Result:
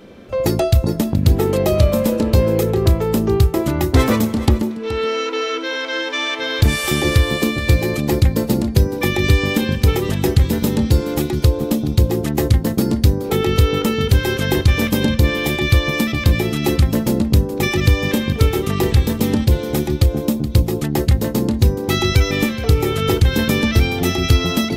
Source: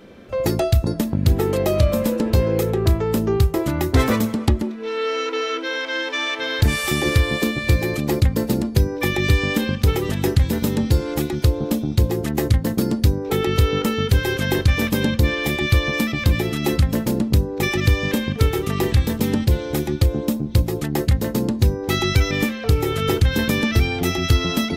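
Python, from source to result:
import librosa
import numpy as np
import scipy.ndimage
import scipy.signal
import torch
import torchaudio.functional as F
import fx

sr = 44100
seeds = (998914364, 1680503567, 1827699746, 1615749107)

p1 = fx.peak_eq(x, sr, hz=1700.0, db=-2.5, octaves=0.77)
p2 = p1 + fx.echo_single(p1, sr, ms=424, db=-14.5, dry=0)
y = p2 * 10.0 ** (3.0 / 20.0)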